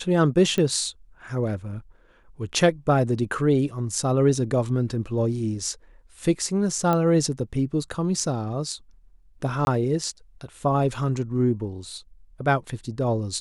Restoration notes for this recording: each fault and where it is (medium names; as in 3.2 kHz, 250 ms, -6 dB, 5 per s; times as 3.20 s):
0.58 s: pop -14 dBFS
6.93 s: pop -11 dBFS
9.65–9.67 s: dropout 21 ms